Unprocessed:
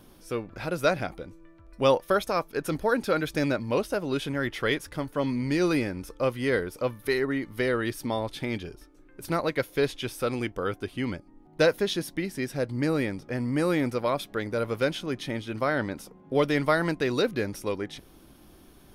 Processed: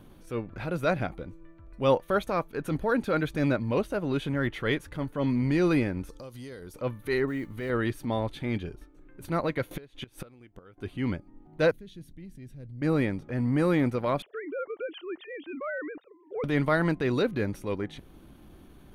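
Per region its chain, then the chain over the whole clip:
6.09–6.74 s: resonant high shelf 3.5 kHz +13 dB, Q 1.5 + compression 10:1, threshold -39 dBFS
7.27–7.70 s: compression, threshold -29 dBFS + modulation noise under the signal 25 dB + tape noise reduction on one side only decoder only
9.71–10.78 s: upward compressor, threshold -26 dBFS + inverted gate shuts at -21 dBFS, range -24 dB
11.71–12.82 s: amplifier tone stack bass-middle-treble 10-0-1 + level flattener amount 50%
14.22–16.44 s: formants replaced by sine waves + compression 3:1, threshold -30 dBFS
whole clip: tone controls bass +5 dB, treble -7 dB; band-stop 5.2 kHz, Q 6.3; transient shaper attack -6 dB, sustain -2 dB

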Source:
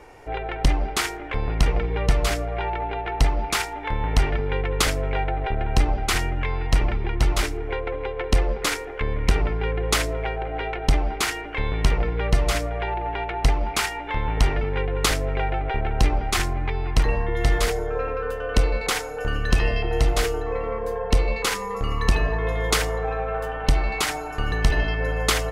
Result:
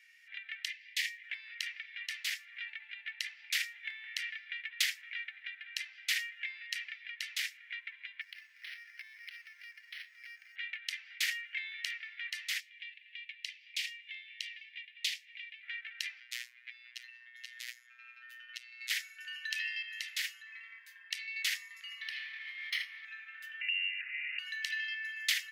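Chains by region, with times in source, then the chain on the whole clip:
0.69–1.24 s: steep high-pass 1.7 kHz 96 dB/octave + treble shelf 6.5 kHz -5 dB
8.21–10.56 s: steep high-pass 160 Hz + compression, threshold -30 dBFS + decimation joined by straight lines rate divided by 6×
12.60–15.63 s: Chebyshev band-stop 320–2800 Hz + treble shelf 7.3 kHz -10.5 dB
16.20–18.90 s: compression 4:1, threshold -24 dBFS + robot voice 121 Hz
22.01–23.05 s: comb filter that takes the minimum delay 0.95 ms + boxcar filter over 6 samples
23.61–24.39 s: compression 5:1, threshold -28 dBFS + frequency inversion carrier 2.8 kHz
whole clip: Chebyshev high-pass 1.8 kHz, order 5; peaking EQ 8.9 kHz -8 dB 0.98 oct; trim -4.5 dB

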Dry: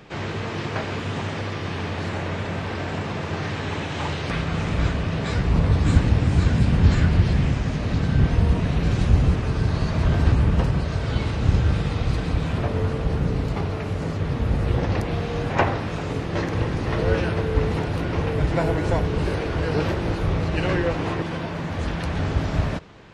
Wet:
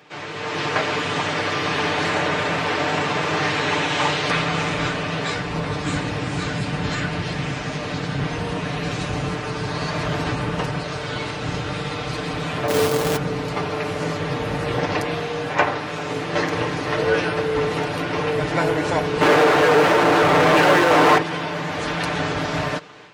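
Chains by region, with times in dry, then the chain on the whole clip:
12.68–13.17 s: Savitzky-Golay filter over 41 samples + peaking EQ 420 Hz +5 dB 2.9 oct + companded quantiser 4-bit
19.21–21.18 s: low-pass 1.9 kHz 6 dB/octave + overdrive pedal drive 43 dB, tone 1.1 kHz, clips at -10 dBFS
whole clip: comb 6.7 ms, depth 57%; level rider; high-pass 550 Hz 6 dB/octave; trim -1 dB

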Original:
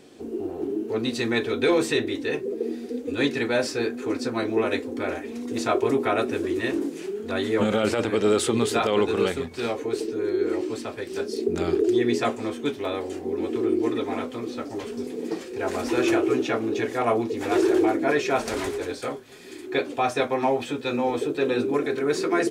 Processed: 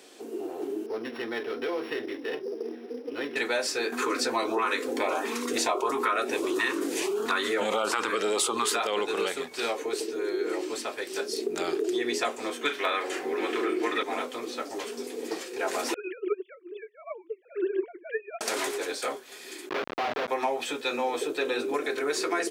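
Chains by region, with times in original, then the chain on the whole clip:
0.86–3.36 s: sorted samples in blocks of 8 samples + distance through air 440 m + compression 3:1, threshold -25 dBFS
3.92–8.76 s: LFO notch saw up 1.5 Hz 500–2300 Hz + peaking EQ 1.1 kHz +12 dB 0.86 oct + level flattener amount 50%
12.61–14.03 s: peaking EQ 1.7 kHz +12.5 dB 1.9 oct + band-stop 860 Hz, Q 14 + doubling 41 ms -10 dB
15.94–18.41 s: formants replaced by sine waves + upward expansion 2.5:1, over -35 dBFS
19.69–20.28 s: hum notches 50/100/150/200/250/300 Hz + Schmitt trigger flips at -28.5 dBFS + distance through air 280 m
whole clip: Bessel high-pass 580 Hz, order 2; treble shelf 5.7 kHz +5 dB; compression 4:1, threshold -27 dBFS; trim +2.5 dB

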